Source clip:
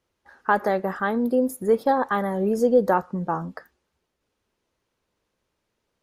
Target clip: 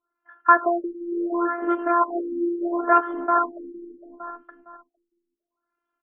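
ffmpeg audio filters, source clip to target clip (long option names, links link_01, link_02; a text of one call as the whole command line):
ffmpeg -i in.wav -filter_complex "[0:a]highpass=frequency=150:width=0.5412,highpass=frequency=150:width=1.3066,bass=frequency=250:gain=7,treble=frequency=4000:gain=-13,asplit=2[link_01][link_02];[link_02]aecho=0:1:459|918|1377|1836:0.376|0.139|0.0515|0.019[link_03];[link_01][link_03]amix=inputs=2:normalize=0,aeval=exprs='0.473*(cos(1*acos(clip(val(0)/0.473,-1,1)))-cos(1*PI/2))+0.0335*(cos(5*acos(clip(val(0)/0.473,-1,1)))-cos(5*PI/2))':channel_layout=same,agate=range=-10dB:threshold=-46dB:ratio=16:detection=peak,afftfilt=real='hypot(re,im)*cos(PI*b)':imag='0':win_size=512:overlap=0.75,firequalizer=gain_entry='entry(550,0);entry(1400,10);entry(2100,-9);entry(3100,-11);entry(4500,6)':delay=0.05:min_phase=1,acrossover=split=210[link_04][link_05];[link_04]acompressor=threshold=-57dB:ratio=12[link_06];[link_06][link_05]amix=inputs=2:normalize=0,crystalizer=i=9.5:c=0,afftfilt=real='re*lt(b*sr/1024,390*pow(3500/390,0.5+0.5*sin(2*PI*0.72*pts/sr)))':imag='im*lt(b*sr/1024,390*pow(3500/390,0.5+0.5*sin(2*PI*0.72*pts/sr)))':win_size=1024:overlap=0.75" out.wav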